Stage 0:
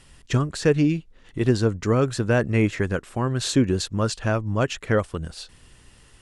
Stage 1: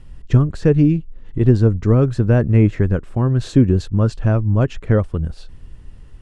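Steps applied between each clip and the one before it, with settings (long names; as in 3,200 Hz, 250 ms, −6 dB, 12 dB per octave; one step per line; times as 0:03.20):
spectral tilt −3.5 dB per octave
level −1 dB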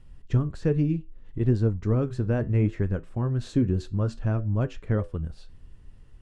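flanger 0.65 Hz, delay 8.7 ms, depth 3.6 ms, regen −75%
level −5.5 dB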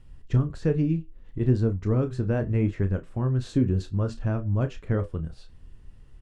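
double-tracking delay 31 ms −10.5 dB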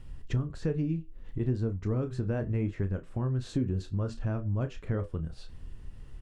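downward compressor 2 to 1, threshold −40 dBFS, peak gain reduction 13 dB
level +4.5 dB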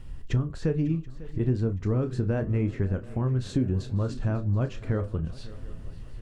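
feedback echo with a long and a short gap by turns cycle 730 ms, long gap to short 3 to 1, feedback 44%, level −18 dB
level +4 dB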